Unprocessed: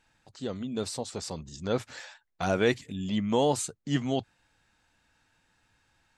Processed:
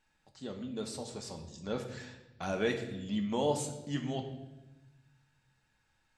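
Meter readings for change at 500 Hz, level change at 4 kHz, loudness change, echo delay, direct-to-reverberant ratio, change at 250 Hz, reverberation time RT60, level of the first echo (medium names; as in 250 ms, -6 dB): -6.0 dB, -6.0 dB, -6.0 dB, no echo, 3.0 dB, -5.5 dB, 1.0 s, no echo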